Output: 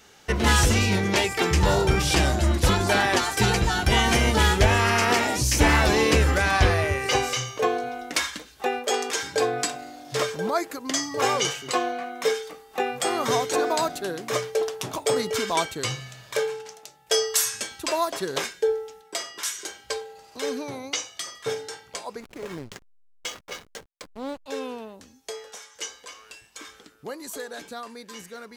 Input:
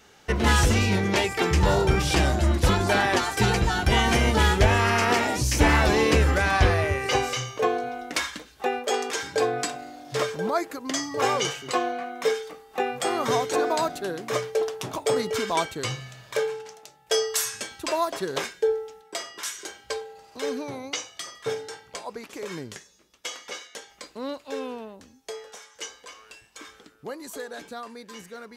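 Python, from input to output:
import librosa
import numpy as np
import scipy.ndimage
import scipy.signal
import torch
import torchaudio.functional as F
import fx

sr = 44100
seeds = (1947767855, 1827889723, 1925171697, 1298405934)

y = fx.high_shelf(x, sr, hz=3200.0, db=4.5)
y = fx.backlash(y, sr, play_db=-31.0, at=(22.2, 24.46))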